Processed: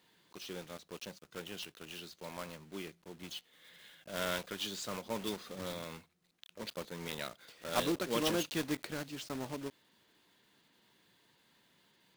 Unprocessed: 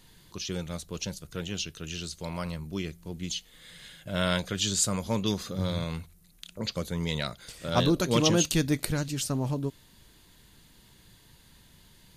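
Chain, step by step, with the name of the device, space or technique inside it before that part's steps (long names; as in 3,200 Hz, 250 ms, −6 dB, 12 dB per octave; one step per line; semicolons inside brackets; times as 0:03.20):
early digital voice recorder (band-pass filter 270–3,700 Hz; one scale factor per block 3 bits)
level −7 dB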